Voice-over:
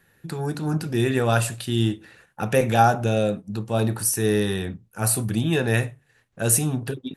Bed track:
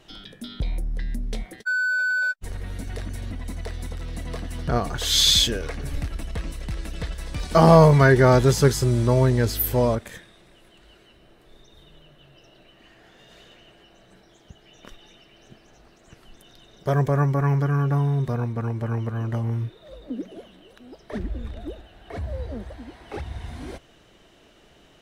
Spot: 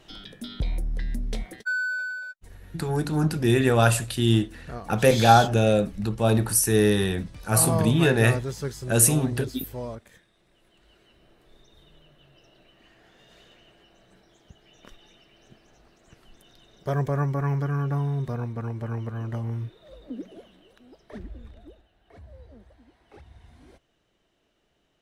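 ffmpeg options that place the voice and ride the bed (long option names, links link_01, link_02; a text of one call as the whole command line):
ffmpeg -i stem1.wav -i stem2.wav -filter_complex "[0:a]adelay=2500,volume=1.5dB[link_01];[1:a]volume=9dB,afade=type=out:start_time=1.52:duration=0.73:silence=0.211349,afade=type=in:start_time=10.3:duration=0.93:silence=0.334965,afade=type=out:start_time=20.28:duration=1.63:silence=0.251189[link_02];[link_01][link_02]amix=inputs=2:normalize=0" out.wav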